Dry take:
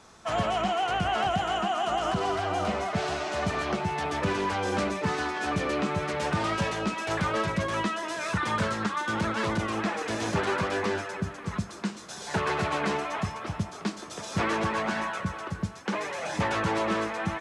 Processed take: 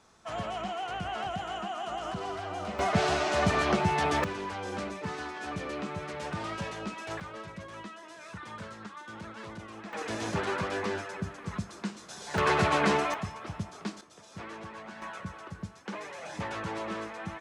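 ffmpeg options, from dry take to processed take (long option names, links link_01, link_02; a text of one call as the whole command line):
ffmpeg -i in.wav -af "asetnsamples=nb_out_samples=441:pad=0,asendcmd='2.79 volume volume 3dB;4.24 volume volume -8dB;7.2 volume volume -15dB;9.93 volume volume -4dB;12.38 volume volume 3dB;13.14 volume volume -5.5dB;14.01 volume volume -15.5dB;15.02 volume volume -8.5dB',volume=-8dB" out.wav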